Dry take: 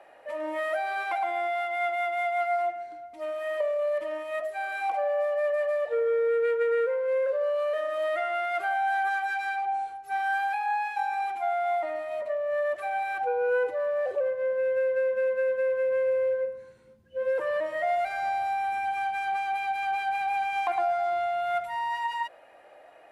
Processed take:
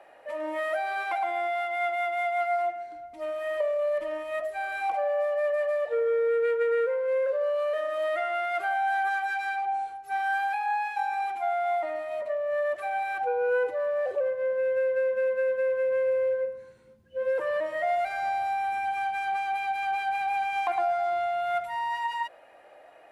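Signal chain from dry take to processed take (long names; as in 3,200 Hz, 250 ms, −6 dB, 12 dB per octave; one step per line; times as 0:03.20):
0:02.95–0:04.96: low-shelf EQ 120 Hz +10.5 dB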